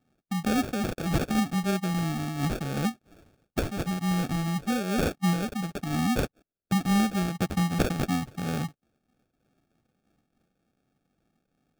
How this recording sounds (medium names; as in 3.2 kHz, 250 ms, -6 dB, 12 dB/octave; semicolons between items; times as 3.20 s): phasing stages 12, 1.9 Hz, lowest notch 700–2000 Hz; aliases and images of a low sample rate 1 kHz, jitter 0%; random flutter of the level